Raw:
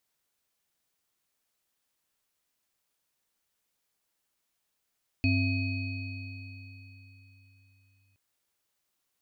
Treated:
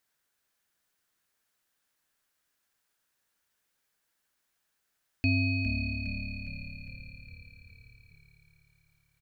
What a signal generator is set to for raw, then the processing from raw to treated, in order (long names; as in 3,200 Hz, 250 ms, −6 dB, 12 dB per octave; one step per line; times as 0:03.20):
inharmonic partials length 2.92 s, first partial 97.5 Hz, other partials 265/667/2,520/4,400 Hz, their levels −2/−20/−5/−14.5 dB, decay 4.09 s, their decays 2.98/2.50/3.82/3.81 s, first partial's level −24 dB
parametric band 1,600 Hz +7.5 dB 0.5 octaves
echo with shifted repeats 409 ms, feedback 58%, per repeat −36 Hz, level −9 dB